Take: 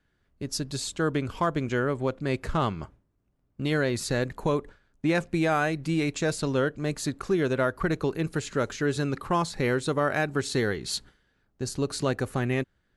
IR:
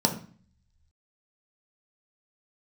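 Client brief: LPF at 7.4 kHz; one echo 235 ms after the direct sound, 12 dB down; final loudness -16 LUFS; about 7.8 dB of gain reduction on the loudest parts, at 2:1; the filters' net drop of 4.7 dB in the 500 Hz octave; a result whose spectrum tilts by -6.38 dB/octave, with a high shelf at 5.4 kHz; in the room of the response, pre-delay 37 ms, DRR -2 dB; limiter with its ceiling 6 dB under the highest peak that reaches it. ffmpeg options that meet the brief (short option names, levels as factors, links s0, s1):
-filter_complex "[0:a]lowpass=7400,equalizer=f=500:t=o:g=-6,highshelf=f=5400:g=-6,acompressor=threshold=0.0141:ratio=2,alimiter=level_in=1.78:limit=0.0631:level=0:latency=1,volume=0.562,aecho=1:1:235:0.251,asplit=2[s0][s1];[1:a]atrim=start_sample=2205,adelay=37[s2];[s1][s2]afir=irnorm=-1:irlink=0,volume=0.335[s3];[s0][s3]amix=inputs=2:normalize=0,volume=5.62"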